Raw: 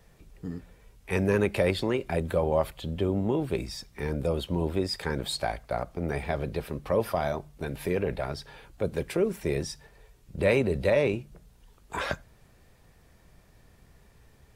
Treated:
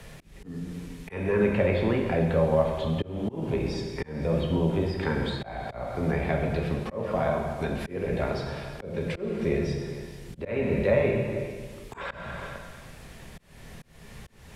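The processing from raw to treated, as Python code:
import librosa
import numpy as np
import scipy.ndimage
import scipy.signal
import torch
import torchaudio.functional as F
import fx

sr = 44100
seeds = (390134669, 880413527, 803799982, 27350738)

p1 = fx.high_shelf(x, sr, hz=3900.0, db=7.5)
p2 = fx.hum_notches(p1, sr, base_hz=50, count=6)
p3 = fx.env_lowpass_down(p2, sr, base_hz=2300.0, full_db=-24.5)
p4 = fx.dmg_noise_band(p3, sr, seeds[0], low_hz=1700.0, high_hz=12000.0, level_db=-60.0)
p5 = fx.bass_treble(p4, sr, bass_db=4, treble_db=-7)
p6 = p5 + fx.echo_single(p5, sr, ms=445, db=-18.5, dry=0)
p7 = fx.rev_gated(p6, sr, seeds[1], gate_ms=440, shape='falling', drr_db=0.5)
p8 = fx.auto_swell(p7, sr, attack_ms=357.0)
y = fx.band_squash(p8, sr, depth_pct=40)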